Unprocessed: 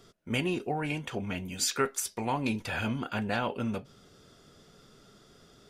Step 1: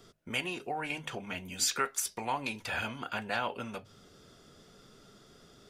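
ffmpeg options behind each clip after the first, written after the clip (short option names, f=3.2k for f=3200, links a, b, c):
-filter_complex "[0:a]bandreject=f=50:t=h:w=6,bandreject=f=100:t=h:w=6,bandreject=f=150:t=h:w=6,acrossover=split=580|2500[a][b][c];[a]acompressor=threshold=-43dB:ratio=4[d];[d][b][c]amix=inputs=3:normalize=0"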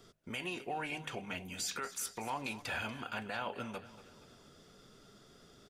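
-af "alimiter=level_in=1.5dB:limit=-24dB:level=0:latency=1:release=28,volume=-1.5dB,aecho=1:1:237|474|711|948:0.158|0.0792|0.0396|0.0198,volume=-2.5dB"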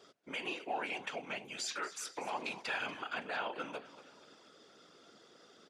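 -af "afftfilt=real='hypot(re,im)*cos(2*PI*random(0))':imag='hypot(re,im)*sin(2*PI*random(1))':win_size=512:overlap=0.75,highpass=310,lowpass=6.3k,volume=7.5dB"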